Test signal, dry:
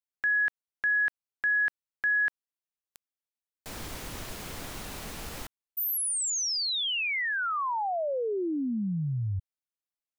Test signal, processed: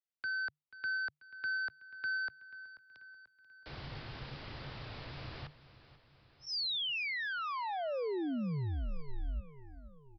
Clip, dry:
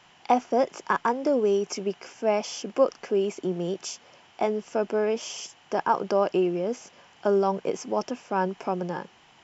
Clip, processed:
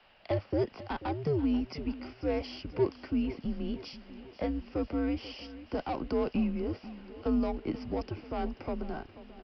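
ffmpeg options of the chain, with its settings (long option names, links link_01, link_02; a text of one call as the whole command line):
ffmpeg -i in.wav -filter_complex "[0:a]afreqshift=-150,acrossover=split=210|500|3200[link_01][link_02][link_03][link_04];[link_03]asoftclip=type=tanh:threshold=-29.5dB[link_05];[link_01][link_02][link_05][link_04]amix=inputs=4:normalize=0,aecho=1:1:487|974|1461|1948|2435:0.158|0.0888|0.0497|0.0278|0.0156,aresample=11025,aresample=44100,volume=-5.5dB" out.wav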